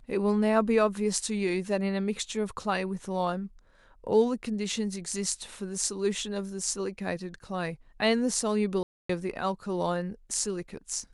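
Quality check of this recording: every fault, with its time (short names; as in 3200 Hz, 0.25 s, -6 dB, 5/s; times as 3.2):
8.83–9.09 gap 0.264 s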